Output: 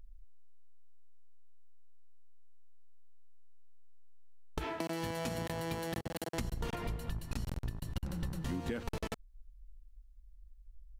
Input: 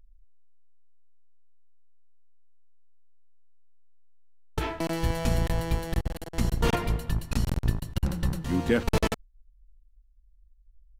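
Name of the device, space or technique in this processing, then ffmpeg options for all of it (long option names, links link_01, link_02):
serial compression, leveller first: -filter_complex "[0:a]asettb=1/sr,asplit=3[link_01][link_02][link_03];[link_01]atrim=end=4.644[link_04];[link_02]atrim=start=4.64:end=6.39,asetpts=PTS-STARTPTS,afade=type=in:duration=0.004:curve=qsin,afade=type=out:start_time=1.746:duration=0.004:curve=qsin,highpass=160[link_05];[link_03]atrim=start=6.386[link_06];[link_04][link_05]acrossfade=duration=0.004:curve1=hsin:curve2=qsin[link_07];[link_07][link_06]acrossfade=duration=0.004:curve1=qsin:curve2=hsin,acompressor=threshold=-29dB:ratio=2.5,acompressor=threshold=-37dB:ratio=6,volume=3dB"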